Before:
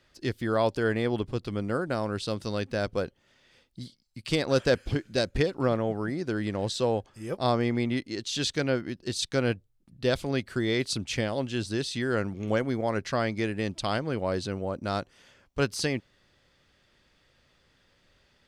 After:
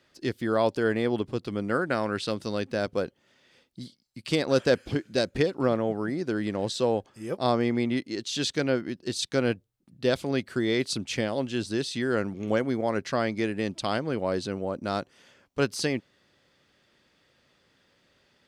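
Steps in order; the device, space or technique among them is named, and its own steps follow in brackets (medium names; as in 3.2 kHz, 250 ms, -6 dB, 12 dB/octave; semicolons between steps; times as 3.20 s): filter by subtraction (in parallel: low-pass 240 Hz 12 dB/octave + polarity flip); 1.64–2.31 s: on the sum: dynamic bell 1.9 kHz, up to +8 dB, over -48 dBFS, Q 1.1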